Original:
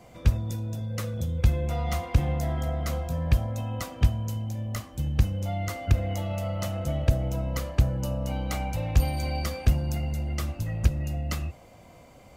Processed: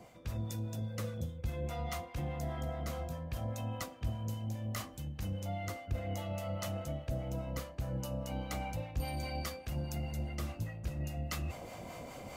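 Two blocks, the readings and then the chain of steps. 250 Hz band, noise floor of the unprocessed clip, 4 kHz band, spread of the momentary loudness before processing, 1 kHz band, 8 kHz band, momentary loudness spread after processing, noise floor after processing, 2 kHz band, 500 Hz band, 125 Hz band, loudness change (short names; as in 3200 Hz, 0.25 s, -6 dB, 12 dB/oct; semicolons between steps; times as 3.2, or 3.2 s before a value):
-8.5 dB, -51 dBFS, -7.0 dB, 6 LU, -7.0 dB, -7.0 dB, 3 LU, -51 dBFS, -7.5 dB, -7.5 dB, -11.5 dB, -11.0 dB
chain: low shelf 84 Hz -8 dB; reverse; compressor 5:1, threshold -43 dBFS, peak gain reduction 22 dB; reverse; harmonic tremolo 4.9 Hz, depth 50%, crossover 690 Hz; gain +8.5 dB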